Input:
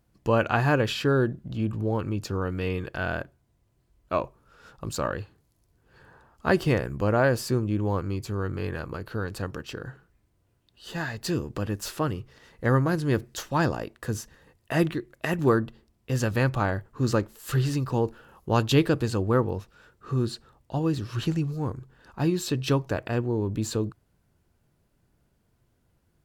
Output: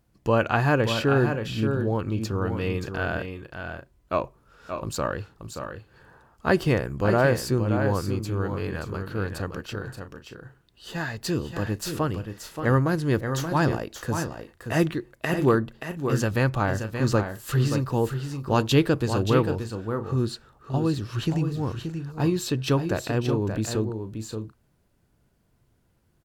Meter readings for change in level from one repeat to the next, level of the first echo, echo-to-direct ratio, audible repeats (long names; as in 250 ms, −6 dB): repeats not evenly spaced, −7.5 dB, −7.0 dB, 2